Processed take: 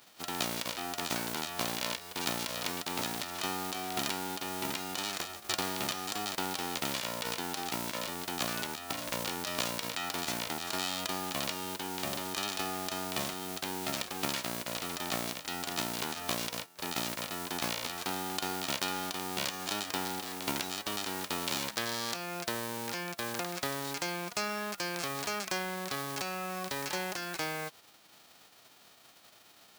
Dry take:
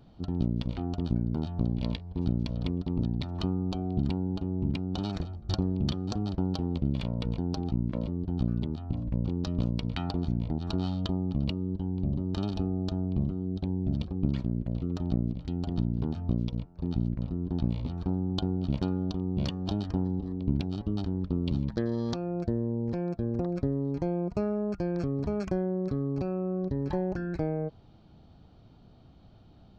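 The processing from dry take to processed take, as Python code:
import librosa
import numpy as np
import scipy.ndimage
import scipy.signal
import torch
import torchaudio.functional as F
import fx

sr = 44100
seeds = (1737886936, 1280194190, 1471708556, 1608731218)

y = fx.envelope_flatten(x, sr, power=0.3)
y = fx.highpass(y, sr, hz=530.0, slope=6)
y = F.gain(torch.from_numpy(y), -2.5).numpy()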